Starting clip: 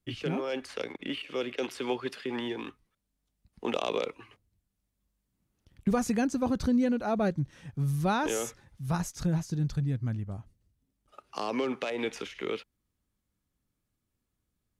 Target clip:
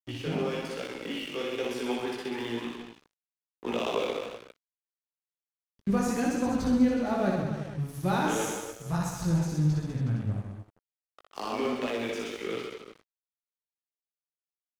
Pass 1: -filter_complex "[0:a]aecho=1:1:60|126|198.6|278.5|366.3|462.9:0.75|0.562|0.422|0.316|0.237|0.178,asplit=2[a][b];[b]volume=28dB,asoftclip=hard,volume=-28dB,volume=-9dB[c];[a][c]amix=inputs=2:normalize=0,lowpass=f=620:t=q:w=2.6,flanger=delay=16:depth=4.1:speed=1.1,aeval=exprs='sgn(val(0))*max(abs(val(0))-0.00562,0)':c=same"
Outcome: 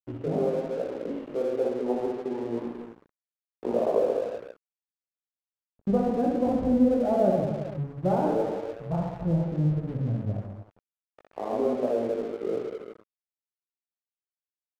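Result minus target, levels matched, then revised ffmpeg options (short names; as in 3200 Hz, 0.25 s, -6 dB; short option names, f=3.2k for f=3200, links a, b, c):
500 Hz band +4.0 dB
-filter_complex "[0:a]aecho=1:1:60|126|198.6|278.5|366.3|462.9:0.75|0.562|0.422|0.316|0.237|0.178,asplit=2[a][b];[b]volume=28dB,asoftclip=hard,volume=-28dB,volume=-9dB[c];[a][c]amix=inputs=2:normalize=0,flanger=delay=16:depth=4.1:speed=1.1,aeval=exprs='sgn(val(0))*max(abs(val(0))-0.00562,0)':c=same"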